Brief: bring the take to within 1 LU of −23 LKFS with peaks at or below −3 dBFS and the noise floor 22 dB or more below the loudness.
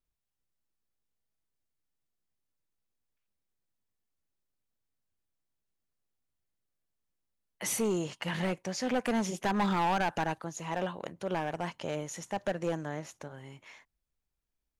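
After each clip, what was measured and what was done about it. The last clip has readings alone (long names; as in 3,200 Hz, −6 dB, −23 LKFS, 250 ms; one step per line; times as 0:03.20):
share of clipped samples 1.3%; peaks flattened at −24.5 dBFS; integrated loudness −33.0 LKFS; sample peak −24.5 dBFS; target loudness −23.0 LKFS
→ clipped peaks rebuilt −24.5 dBFS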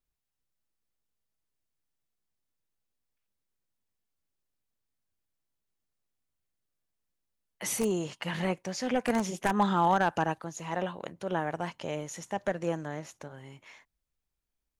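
share of clipped samples 0.0%; integrated loudness −31.0 LKFS; sample peak −15.5 dBFS; target loudness −23.0 LKFS
→ level +8 dB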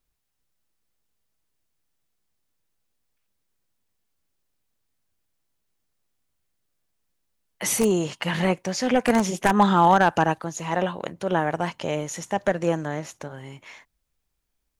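integrated loudness −23.0 LKFS; sample peak −7.5 dBFS; background noise floor −77 dBFS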